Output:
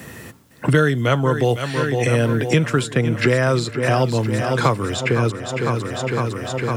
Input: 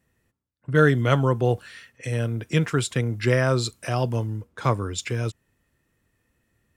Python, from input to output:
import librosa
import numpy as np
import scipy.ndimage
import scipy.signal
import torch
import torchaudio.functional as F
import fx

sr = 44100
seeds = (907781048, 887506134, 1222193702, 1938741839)

y = scipy.signal.sosfilt(scipy.signal.butter(2, 110.0, 'highpass', fs=sr, output='sos'), x)
y = fx.echo_feedback(y, sr, ms=506, feedback_pct=56, wet_db=-13)
y = fx.band_squash(y, sr, depth_pct=100)
y = F.gain(torch.from_numpy(y), 4.5).numpy()